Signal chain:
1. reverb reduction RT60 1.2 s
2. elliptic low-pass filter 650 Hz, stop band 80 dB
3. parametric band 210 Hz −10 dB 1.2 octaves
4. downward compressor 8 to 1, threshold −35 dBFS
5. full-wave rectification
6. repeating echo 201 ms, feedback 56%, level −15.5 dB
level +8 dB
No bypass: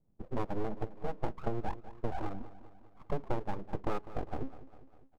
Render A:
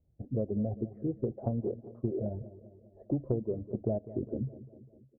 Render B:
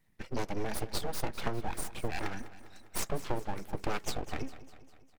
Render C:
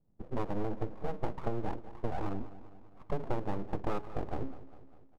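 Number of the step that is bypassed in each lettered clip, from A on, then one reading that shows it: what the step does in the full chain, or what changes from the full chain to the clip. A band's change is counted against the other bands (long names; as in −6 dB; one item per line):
5, 1 kHz band −18.5 dB
2, 2 kHz band +8.5 dB
1, change in momentary loudness spread +5 LU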